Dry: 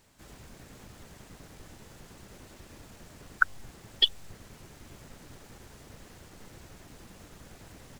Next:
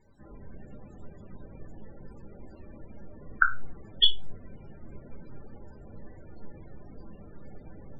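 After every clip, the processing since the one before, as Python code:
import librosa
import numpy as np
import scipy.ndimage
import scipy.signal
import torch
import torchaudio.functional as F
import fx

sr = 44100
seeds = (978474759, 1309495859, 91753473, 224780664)

y = fx.room_shoebox(x, sr, seeds[0], volume_m3=140.0, walls='furnished', distance_m=1.2)
y = fx.spec_topn(y, sr, count=32)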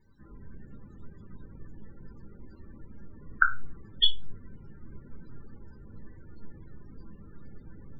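y = fx.fixed_phaser(x, sr, hz=2500.0, stages=6)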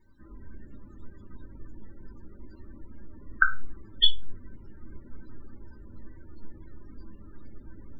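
y = x + 0.55 * np.pad(x, (int(3.2 * sr / 1000.0), 0))[:len(x)]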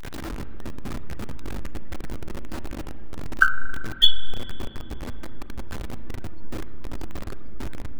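y = x + 0.5 * 10.0 ** (-31.0 / 20.0) * np.sign(x)
y = fx.rev_spring(y, sr, rt60_s=2.4, pass_ms=(37,), chirp_ms=75, drr_db=13.0)
y = F.gain(torch.from_numpy(y), 4.0).numpy()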